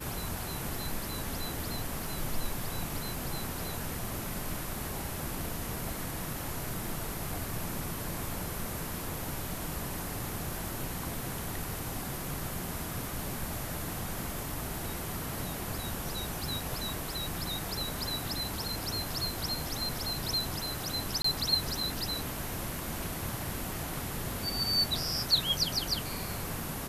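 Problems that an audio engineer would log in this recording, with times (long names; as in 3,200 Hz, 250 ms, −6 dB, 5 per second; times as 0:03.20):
0:21.22–0:21.24: drop-out 24 ms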